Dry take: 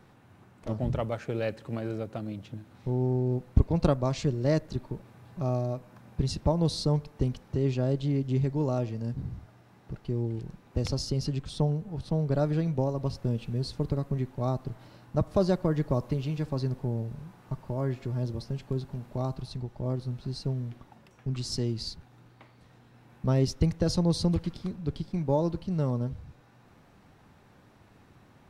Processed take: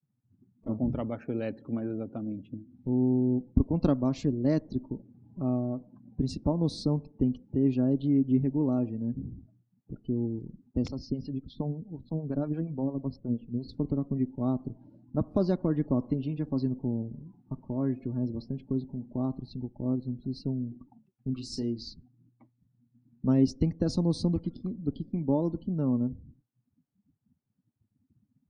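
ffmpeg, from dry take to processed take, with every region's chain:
-filter_complex "[0:a]asettb=1/sr,asplit=3[a][b][c];[a]atrim=end=10.884[d];[b]atrim=start=10.88:end=13.69,asetpts=PTS-STARTPTS,afade=t=in:d=0.004:c=qsin,afade=t=out:st=2.806:d=0.004:c=qsin,lowpass=5k,acrossover=split=530[e][f];[e]aeval=exprs='val(0)*(1-0.7/2+0.7/2*cos(2*PI*8.6*n/s))':c=same[g];[f]aeval=exprs='val(0)*(1-0.7/2-0.7/2*cos(2*PI*8.6*n/s))':c=same[h];[g][h]amix=inputs=2:normalize=0[i];[c]atrim=start=13.686[j];[d][i]acrossfade=d=0.004:c1=hsin:c2=qsin[k];[k][j]acrossfade=d=0.004:c1=qsin:c2=hsin,asettb=1/sr,asplit=3[l][m][n];[l]atrim=end=21.344[o];[m]atrim=start=21.34:end=21.89,asetpts=PTS-STARTPTS,afade=t=in:d=0.004:c=qsin,afade=t=out:st=0.546:d=0.004:c=qsin,equalizer=f=150:t=o:w=2.2:g=-7.5,asplit=2[p][q];[q]adelay=34,volume=-7dB[r];[p][r]amix=inputs=2:normalize=0,atrim=end_sample=24255[s];[n]atrim=start=21.886[t];[o][s]acrossfade=d=0.004:c1=hsin:c2=qsin[u];[u][t]acrossfade=d=0.004:c1=qsin:c2=hsin,agate=range=-33dB:threshold=-52dB:ratio=3:detection=peak,afftdn=nr=28:nf=-47,equalizer=f=260:w=2:g=14.5,volume=-6dB"

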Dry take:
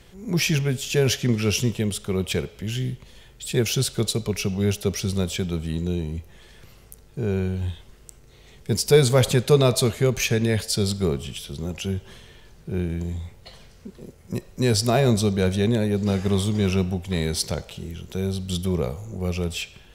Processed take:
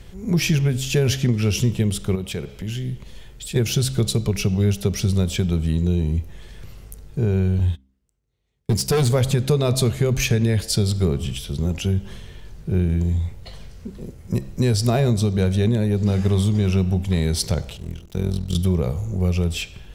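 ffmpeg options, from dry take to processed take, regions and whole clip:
-filter_complex "[0:a]asettb=1/sr,asplit=3[a][b][c];[a]atrim=end=2.154[d];[b]atrim=start=2.15:end=3.56,asetpts=PTS-STARTPTS,afade=t=in:d=0.004:c=qsin,afade=t=out:st=1.406:d=0.004:c=qsin,equalizer=f=77:w=0.98:g=-6,acompressor=threshold=-34dB:ratio=2:attack=3.2:release=140:knee=1:detection=peak[e];[c]atrim=start=3.556[f];[d][e]acrossfade=d=0.004:c1=hsin:c2=qsin[g];[g][f]acrossfade=d=0.004:c1=qsin:c2=hsin,asettb=1/sr,asplit=3[h][i][j];[h]atrim=end=7.594[k];[i]atrim=start=7.59:end=9.12,asetpts=PTS-STARTPTS,afade=t=in:d=0.004:c=qsin,afade=t=out:st=1.526:d=0.004:c=qsin,agate=range=-31dB:threshold=-37dB:ratio=16:release=100:detection=peak,highpass=52,asoftclip=type=hard:threshold=-17.5dB[l];[j]atrim=start=9.116[m];[k][l]acrossfade=d=0.004:c1=hsin:c2=qsin[n];[n][m]acrossfade=d=0.004:c1=qsin:c2=hsin,asettb=1/sr,asplit=3[o][p][q];[o]atrim=end=17.774[r];[p]atrim=start=17.77:end=18.55,asetpts=PTS-STARTPTS,afade=t=in:d=0.004:c=qsin,afade=t=out:st=0.776:d=0.004:c=qsin,tremolo=f=42:d=0.788,aeval=exprs='sgn(val(0))*max(abs(val(0))-0.00447,0)':c=same[s];[q]atrim=start=18.546[t];[r][s]acrossfade=d=0.004:c1=hsin:c2=qsin[u];[u][t]acrossfade=d=0.004:c1=qsin:c2=hsin,lowshelf=f=180:g=10.5,bandreject=f=66.06:t=h:w=4,bandreject=f=132.12:t=h:w=4,bandreject=f=198.18:t=h:w=4,bandreject=f=264.24:t=h:w=4,bandreject=f=330.3:t=h:w=4,acompressor=threshold=-17dB:ratio=6,volume=2dB"

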